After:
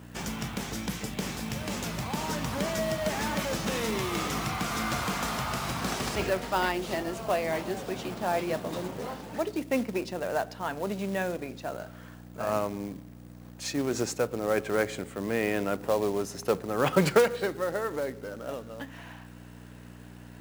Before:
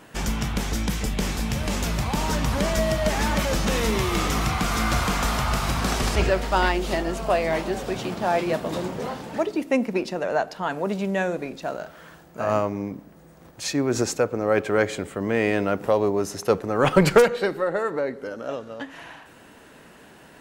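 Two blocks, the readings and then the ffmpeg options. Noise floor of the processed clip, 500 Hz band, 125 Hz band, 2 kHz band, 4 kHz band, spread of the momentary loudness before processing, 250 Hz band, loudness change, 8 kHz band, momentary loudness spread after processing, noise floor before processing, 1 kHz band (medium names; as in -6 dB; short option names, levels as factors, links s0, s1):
-47 dBFS, -6.0 dB, -8.0 dB, -6.0 dB, -5.5 dB, 10 LU, -6.0 dB, -6.0 dB, -5.0 dB, 14 LU, -49 dBFS, -6.0 dB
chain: -af "aeval=exprs='val(0)+0.0178*(sin(2*PI*60*n/s)+sin(2*PI*2*60*n/s)/2+sin(2*PI*3*60*n/s)/3+sin(2*PI*4*60*n/s)/4+sin(2*PI*5*60*n/s)/5)':c=same,highpass=110,acrusher=bits=4:mode=log:mix=0:aa=0.000001,volume=0.501"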